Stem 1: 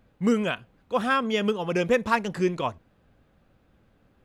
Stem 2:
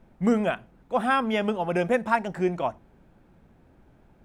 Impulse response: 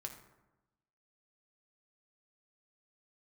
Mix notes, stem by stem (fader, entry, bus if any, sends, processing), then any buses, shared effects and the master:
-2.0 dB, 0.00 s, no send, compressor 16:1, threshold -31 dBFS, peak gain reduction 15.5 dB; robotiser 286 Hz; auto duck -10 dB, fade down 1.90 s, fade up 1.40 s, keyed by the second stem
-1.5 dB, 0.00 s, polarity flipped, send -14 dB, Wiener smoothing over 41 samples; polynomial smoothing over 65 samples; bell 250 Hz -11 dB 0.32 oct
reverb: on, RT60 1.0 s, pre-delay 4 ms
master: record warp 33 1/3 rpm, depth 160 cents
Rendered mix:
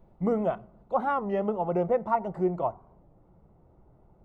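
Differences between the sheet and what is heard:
stem 1 -2.0 dB -> -10.5 dB; stem 2: missing Wiener smoothing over 41 samples

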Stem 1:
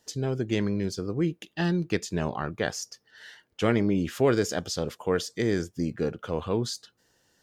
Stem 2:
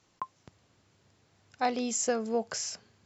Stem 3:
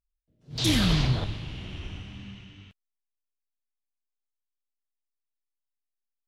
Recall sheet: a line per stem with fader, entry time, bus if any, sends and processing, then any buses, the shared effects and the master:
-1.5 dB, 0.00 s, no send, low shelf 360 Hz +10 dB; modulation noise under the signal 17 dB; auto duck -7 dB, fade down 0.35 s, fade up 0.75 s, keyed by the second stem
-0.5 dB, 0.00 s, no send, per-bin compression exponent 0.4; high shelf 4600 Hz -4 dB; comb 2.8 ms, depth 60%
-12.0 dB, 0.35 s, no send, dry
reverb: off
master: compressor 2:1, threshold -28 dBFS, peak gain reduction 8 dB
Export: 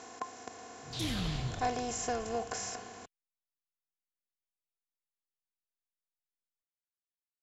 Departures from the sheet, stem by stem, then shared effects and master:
stem 1: muted; stem 2 -0.5 dB -> -9.0 dB; master: missing compressor 2:1, threshold -28 dBFS, peak gain reduction 8 dB

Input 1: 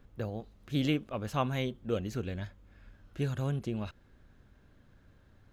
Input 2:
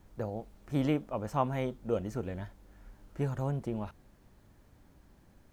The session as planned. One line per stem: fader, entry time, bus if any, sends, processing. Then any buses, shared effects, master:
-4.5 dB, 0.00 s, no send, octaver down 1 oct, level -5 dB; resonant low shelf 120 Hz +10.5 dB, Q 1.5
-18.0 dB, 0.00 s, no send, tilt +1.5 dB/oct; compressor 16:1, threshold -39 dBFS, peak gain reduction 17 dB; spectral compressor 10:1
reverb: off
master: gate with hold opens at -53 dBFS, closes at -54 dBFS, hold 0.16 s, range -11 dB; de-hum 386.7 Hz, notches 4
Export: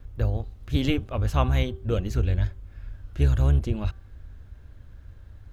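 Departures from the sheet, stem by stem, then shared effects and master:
stem 1 -4.5 dB -> +5.0 dB; stem 2 -18.0 dB -> -28.0 dB

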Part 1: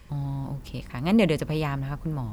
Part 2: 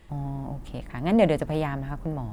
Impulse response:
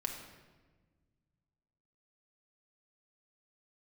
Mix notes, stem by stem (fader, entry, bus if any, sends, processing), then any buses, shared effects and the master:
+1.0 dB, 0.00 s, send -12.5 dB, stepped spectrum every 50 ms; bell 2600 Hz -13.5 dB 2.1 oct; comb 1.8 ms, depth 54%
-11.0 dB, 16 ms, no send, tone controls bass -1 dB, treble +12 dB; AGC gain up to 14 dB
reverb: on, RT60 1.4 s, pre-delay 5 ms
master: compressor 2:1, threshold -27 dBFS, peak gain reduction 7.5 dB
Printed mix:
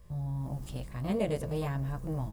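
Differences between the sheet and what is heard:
stem 1 +1.0 dB -> -7.5 dB; stem 2 -11.0 dB -> -17.5 dB

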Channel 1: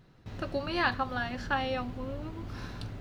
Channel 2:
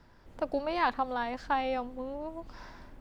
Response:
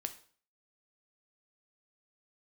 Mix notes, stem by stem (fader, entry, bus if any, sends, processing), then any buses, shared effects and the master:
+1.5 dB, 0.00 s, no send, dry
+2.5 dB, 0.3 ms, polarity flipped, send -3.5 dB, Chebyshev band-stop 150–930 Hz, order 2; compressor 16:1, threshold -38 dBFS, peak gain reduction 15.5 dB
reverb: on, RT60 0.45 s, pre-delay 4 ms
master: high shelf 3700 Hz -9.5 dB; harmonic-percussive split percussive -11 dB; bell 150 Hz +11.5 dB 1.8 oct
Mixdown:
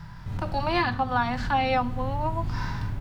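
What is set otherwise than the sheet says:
stem 2 +2.5 dB -> +13.5 dB; master: missing high shelf 3700 Hz -9.5 dB

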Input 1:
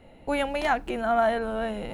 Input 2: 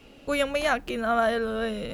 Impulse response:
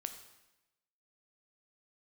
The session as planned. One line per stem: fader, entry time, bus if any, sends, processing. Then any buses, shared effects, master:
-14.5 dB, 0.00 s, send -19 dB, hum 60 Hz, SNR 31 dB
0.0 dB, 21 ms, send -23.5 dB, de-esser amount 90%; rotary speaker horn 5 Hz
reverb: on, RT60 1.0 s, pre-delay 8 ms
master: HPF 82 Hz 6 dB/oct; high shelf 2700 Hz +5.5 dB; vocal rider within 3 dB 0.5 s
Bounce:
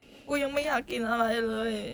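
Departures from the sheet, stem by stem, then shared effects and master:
stem 2: send off; master: missing vocal rider within 3 dB 0.5 s

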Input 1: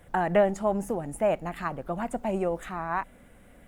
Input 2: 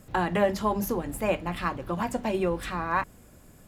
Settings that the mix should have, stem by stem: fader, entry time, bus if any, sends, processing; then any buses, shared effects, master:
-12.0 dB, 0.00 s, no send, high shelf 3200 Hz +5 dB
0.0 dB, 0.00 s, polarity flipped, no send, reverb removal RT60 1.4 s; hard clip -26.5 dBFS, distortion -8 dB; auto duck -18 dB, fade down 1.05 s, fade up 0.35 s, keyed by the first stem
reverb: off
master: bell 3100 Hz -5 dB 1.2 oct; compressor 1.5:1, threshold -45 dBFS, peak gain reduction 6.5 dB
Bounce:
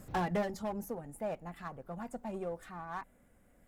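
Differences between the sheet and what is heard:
stem 1: missing high shelf 3200 Hz +5 dB; master: missing compressor 1.5:1, threshold -45 dBFS, peak gain reduction 6.5 dB

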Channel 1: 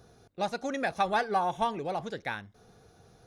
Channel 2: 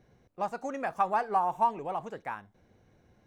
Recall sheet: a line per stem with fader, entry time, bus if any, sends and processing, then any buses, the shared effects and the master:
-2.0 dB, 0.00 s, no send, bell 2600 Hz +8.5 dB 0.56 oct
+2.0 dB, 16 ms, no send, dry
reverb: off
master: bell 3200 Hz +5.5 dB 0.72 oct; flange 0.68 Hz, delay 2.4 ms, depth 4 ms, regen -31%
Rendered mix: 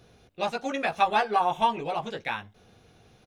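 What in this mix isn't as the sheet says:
stem 2: polarity flipped; master: missing flange 0.68 Hz, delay 2.4 ms, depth 4 ms, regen -31%

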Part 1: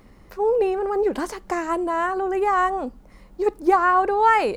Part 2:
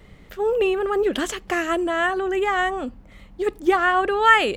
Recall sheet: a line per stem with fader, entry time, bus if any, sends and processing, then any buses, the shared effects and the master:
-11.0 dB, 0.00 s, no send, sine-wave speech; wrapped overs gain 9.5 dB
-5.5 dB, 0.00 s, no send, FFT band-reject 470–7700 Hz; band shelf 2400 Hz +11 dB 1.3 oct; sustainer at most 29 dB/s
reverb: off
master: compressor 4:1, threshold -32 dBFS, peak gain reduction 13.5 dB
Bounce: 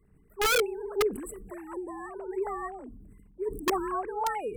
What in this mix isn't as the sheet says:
stem 2 -5.5 dB -> -16.0 dB; master: missing compressor 4:1, threshold -32 dBFS, peak gain reduction 13.5 dB

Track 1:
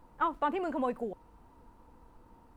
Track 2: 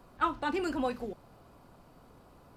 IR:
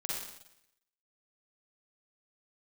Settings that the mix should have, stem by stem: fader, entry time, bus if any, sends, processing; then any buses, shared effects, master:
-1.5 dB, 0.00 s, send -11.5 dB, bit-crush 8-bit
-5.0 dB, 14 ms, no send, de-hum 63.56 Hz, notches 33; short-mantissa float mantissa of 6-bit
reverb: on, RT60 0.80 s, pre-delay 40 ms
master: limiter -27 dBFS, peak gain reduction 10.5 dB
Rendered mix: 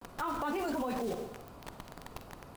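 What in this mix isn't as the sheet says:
stem 1 -1.5 dB -> +9.5 dB; stem 2 -5.0 dB -> +6.5 dB

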